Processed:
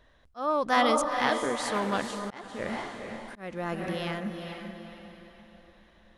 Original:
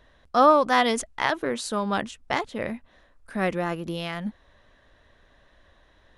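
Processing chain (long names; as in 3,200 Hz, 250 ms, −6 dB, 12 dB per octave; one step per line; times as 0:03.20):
feedback delay with all-pass diffusion 453 ms, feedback 42%, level −6 dB
volume swells 368 ms
0:01.73–0:02.68: highs frequency-modulated by the lows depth 0.17 ms
level −3.5 dB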